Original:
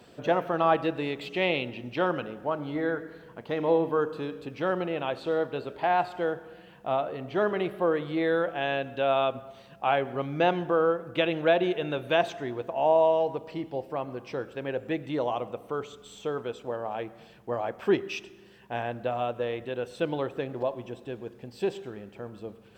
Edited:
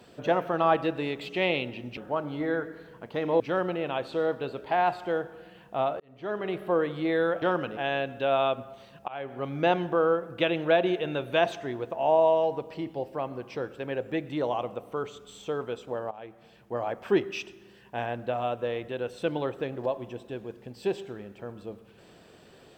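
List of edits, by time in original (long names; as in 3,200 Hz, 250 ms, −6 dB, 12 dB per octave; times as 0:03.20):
0:01.97–0:02.32: move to 0:08.54
0:03.75–0:04.52: remove
0:07.12–0:07.79: fade in
0:09.85–0:10.31: fade in, from −24 dB
0:16.88–0:17.62: fade in, from −13 dB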